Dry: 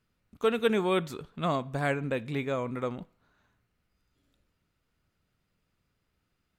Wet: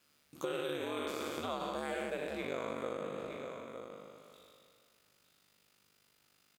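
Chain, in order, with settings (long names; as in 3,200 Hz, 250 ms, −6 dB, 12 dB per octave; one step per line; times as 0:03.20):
peak hold with a decay on every bin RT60 2.01 s
ring modulation 73 Hz, from 0:02.44 25 Hz
brickwall limiter −18 dBFS, peak gain reduction 6.5 dB
parametric band 1,600 Hz −6.5 dB 2 octaves
single-tap delay 913 ms −16 dB
downward compressor 4 to 1, threshold −38 dBFS, peak gain reduction 11 dB
high-pass filter 440 Hz 6 dB per octave
one half of a high-frequency compander encoder only
level +5.5 dB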